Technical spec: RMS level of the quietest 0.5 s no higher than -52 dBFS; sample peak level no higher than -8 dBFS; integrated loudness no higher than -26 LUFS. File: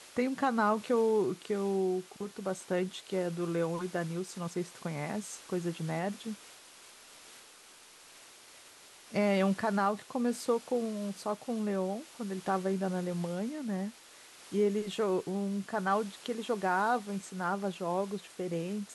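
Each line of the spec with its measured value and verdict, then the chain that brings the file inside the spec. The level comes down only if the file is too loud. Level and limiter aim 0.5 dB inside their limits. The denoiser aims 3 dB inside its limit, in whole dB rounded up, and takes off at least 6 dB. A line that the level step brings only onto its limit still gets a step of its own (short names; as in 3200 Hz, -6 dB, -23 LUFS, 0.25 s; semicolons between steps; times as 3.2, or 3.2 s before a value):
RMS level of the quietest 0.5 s -56 dBFS: OK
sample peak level -16.5 dBFS: OK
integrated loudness -33.0 LUFS: OK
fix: none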